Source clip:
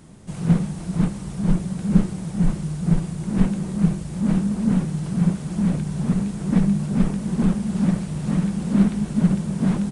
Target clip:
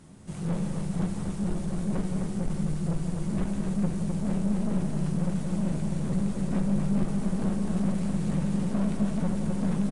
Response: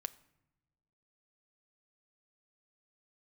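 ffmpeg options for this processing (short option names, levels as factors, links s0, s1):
-filter_complex "[0:a]aeval=exprs='(tanh(11.2*val(0)+0.3)-tanh(0.3))/11.2':c=same,aecho=1:1:170|256:0.376|0.562[s0];[1:a]atrim=start_sample=2205,asetrate=22050,aresample=44100[s1];[s0][s1]afir=irnorm=-1:irlink=0,volume=0.531"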